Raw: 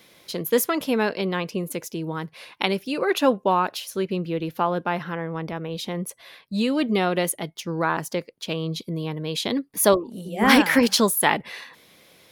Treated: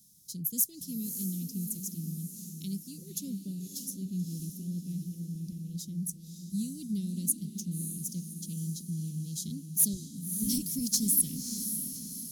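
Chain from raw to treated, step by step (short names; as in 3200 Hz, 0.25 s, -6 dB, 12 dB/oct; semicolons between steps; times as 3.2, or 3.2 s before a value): Chebyshev band-stop 190–6200 Hz, order 3; high shelf 2900 Hz +5.5 dB; hard clip -12 dBFS, distortion -23 dB; diffused feedback echo 0.588 s, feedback 51%, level -7.5 dB; gain -4.5 dB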